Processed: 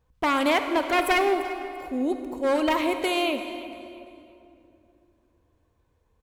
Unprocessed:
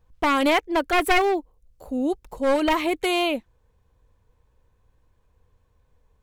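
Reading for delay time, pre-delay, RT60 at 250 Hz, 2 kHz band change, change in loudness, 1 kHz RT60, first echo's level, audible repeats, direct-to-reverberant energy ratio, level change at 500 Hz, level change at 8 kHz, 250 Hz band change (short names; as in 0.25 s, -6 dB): 0.341 s, 23 ms, 3.5 s, -2.0 dB, -2.0 dB, 2.5 s, -17.5 dB, 2, 7.0 dB, -1.5 dB, -2.0 dB, -1.5 dB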